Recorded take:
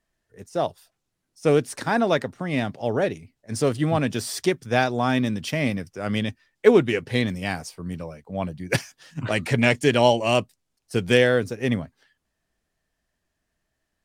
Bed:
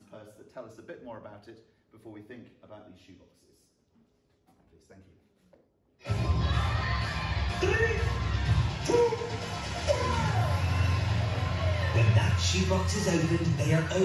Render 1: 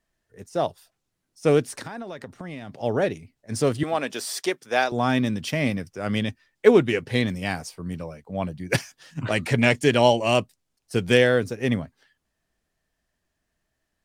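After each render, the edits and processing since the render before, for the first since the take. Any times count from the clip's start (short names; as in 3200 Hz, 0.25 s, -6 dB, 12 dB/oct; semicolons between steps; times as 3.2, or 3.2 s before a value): 1.7–2.79 compressor 16:1, threshold -31 dBFS; 3.83–4.92 HPF 410 Hz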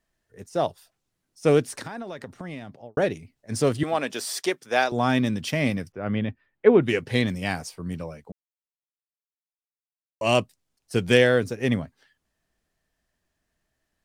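2.55–2.97 studio fade out; 5.92–6.83 air absorption 490 m; 8.32–10.21 mute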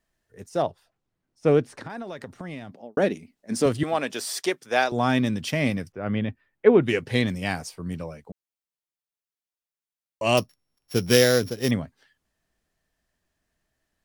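0.62–1.9 LPF 1700 Hz 6 dB/oct; 2.71–3.66 resonant low shelf 160 Hz -7.5 dB, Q 3; 10.37–11.71 sample sorter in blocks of 8 samples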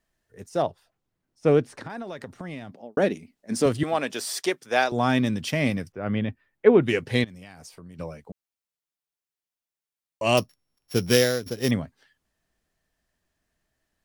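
7.24–7.99 compressor 12:1, threshold -40 dBFS; 10.96–11.46 fade out equal-power, to -14 dB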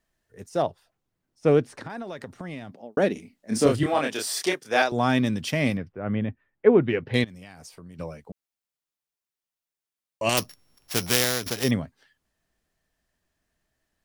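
3.13–4.82 doubler 28 ms -2.5 dB; 5.77–7.14 air absorption 350 m; 10.29–11.64 spectral compressor 2:1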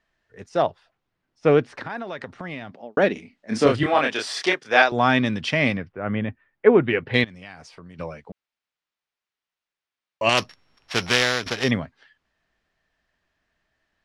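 LPF 5000 Hz 12 dB/oct; bell 1800 Hz +7.5 dB 3 oct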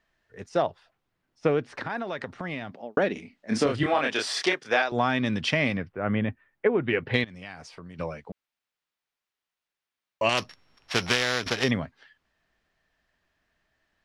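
compressor 12:1, threshold -19 dBFS, peak gain reduction 11.5 dB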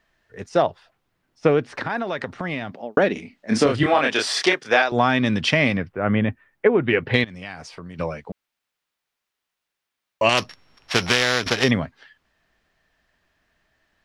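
gain +6 dB; limiter -3 dBFS, peak gain reduction 1.5 dB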